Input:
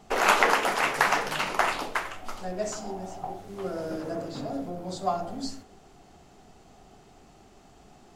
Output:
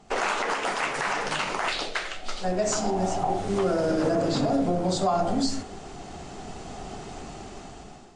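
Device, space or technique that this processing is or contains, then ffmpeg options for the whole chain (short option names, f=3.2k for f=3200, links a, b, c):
low-bitrate web radio: -filter_complex "[0:a]asettb=1/sr,asplit=3[a][b][c];[a]atrim=end=1.684[d];[b]atrim=start=1.68:end=2.44,asetpts=PTS-STARTPTS,afade=t=in:d=0.004:c=qsin,afade=t=out:st=0.756:d=0.004:c=qsin,equalizer=f=100:t=o:w=0.67:g=-11,equalizer=f=250:t=o:w=0.67:g=-7,equalizer=f=1k:t=o:w=0.67:g=-10,equalizer=f=4k:t=o:w=0.67:g=8,equalizer=f=10k:t=o:w=0.67:g=-3[e];[c]atrim=start=2.436[f];[d][e]acrossfade=d=0.004:c1=hsin:c2=qsin[g];[g][f]acrossfade=d=0.004:c1=qsin:c2=hsin,dynaudnorm=f=380:g=5:m=16dB,alimiter=limit=-15dB:level=0:latency=1:release=127" -ar 22050 -c:a libmp3lame -b:a 48k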